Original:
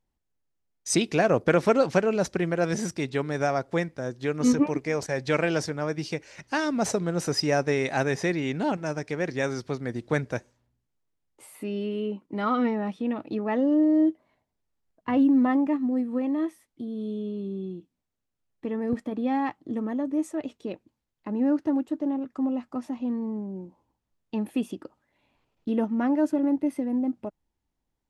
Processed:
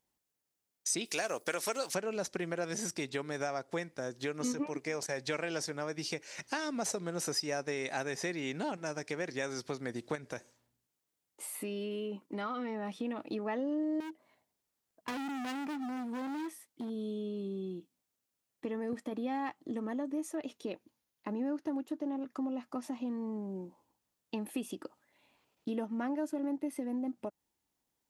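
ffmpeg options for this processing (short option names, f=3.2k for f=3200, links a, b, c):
-filter_complex "[0:a]asettb=1/sr,asplit=3[a][b][c];[a]atrim=end=1.054[d];[b]atrim=start=1.05:end=1.95,asetpts=PTS-STARTPTS,afade=t=in:d=0.004:c=qsin,afade=t=out:st=0.896:d=0.004:c=qsin,aemphasis=mode=production:type=riaa[e];[c]atrim=start=1.946[f];[d][e]acrossfade=d=0.004:c1=hsin:c2=qsin[g];[g][f]acrossfade=d=0.004:c1=qsin:c2=hsin,asettb=1/sr,asplit=3[h][i][j];[h]atrim=end=10.154[k];[i]atrim=start=10.15:end=12.91,asetpts=PTS-STARTPTS,afade=t=in:d=0.004:c=qsin,afade=t=out:st=2.756:d=0.004:c=qsin,acompressor=threshold=-29dB:ratio=4:attack=3.2:release=140:knee=1:detection=peak[l];[j]atrim=start=12.906[m];[k][l]acrossfade=d=0.004:c1=hsin:c2=qsin[n];[n][m]acrossfade=d=0.004:c1=qsin:c2=hsin,asettb=1/sr,asplit=3[o][p][q];[o]atrim=end=14.004[r];[p]atrim=start=14:end=16.9,asetpts=PTS-STARTPTS,afade=t=in:d=0.004:c=qsin,afade=t=out:st=2.896:d=0.004:c=qsin,asoftclip=type=hard:threshold=-31dB[s];[q]atrim=start=16.896[t];[r][s]acrossfade=d=0.004:c1=hsin:c2=qsin[u];[u][t]acrossfade=d=0.004:c1=qsin:c2=hsin,asettb=1/sr,asplit=3[v][w][x];[v]atrim=end=20.134[y];[w]atrim=start=20.13:end=22.83,asetpts=PTS-STARTPTS,afade=t=in:d=0.004:c=qsin,afade=t=out:st=2.696:d=0.004:c=qsin,bandreject=f=7.8k:w=7.5[z];[x]atrim=start=22.826[aa];[y][z]acrossfade=d=0.004:c1=hsin:c2=qsin[ab];[ab][aa]acrossfade=d=0.004:c1=qsin:c2=hsin,highpass=f=270:p=1,highshelf=f=5.1k:g=9.5,acompressor=threshold=-35dB:ratio=3"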